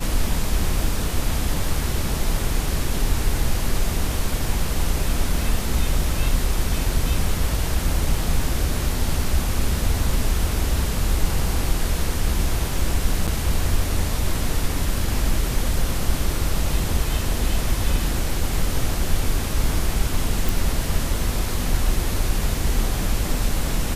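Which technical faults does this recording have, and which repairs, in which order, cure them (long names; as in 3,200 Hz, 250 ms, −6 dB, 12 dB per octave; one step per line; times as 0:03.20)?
0:13.27–0:13.28: drop-out 7.5 ms
0:20.49: click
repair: click removal
repair the gap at 0:13.27, 7.5 ms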